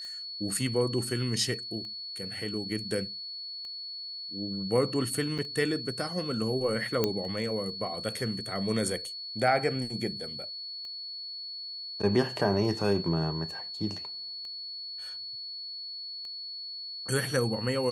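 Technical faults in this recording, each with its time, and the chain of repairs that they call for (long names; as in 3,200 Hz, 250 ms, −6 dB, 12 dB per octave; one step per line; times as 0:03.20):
scratch tick 33 1/3 rpm −31 dBFS
whistle 4,400 Hz −37 dBFS
0:05.38–0:05.39: drop-out 6.1 ms
0:07.04: click −11 dBFS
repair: click removal
notch filter 4,400 Hz, Q 30
repair the gap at 0:05.38, 6.1 ms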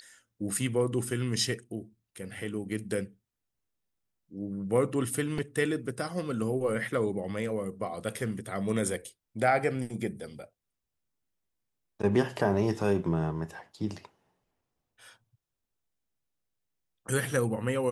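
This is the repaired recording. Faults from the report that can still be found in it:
none of them is left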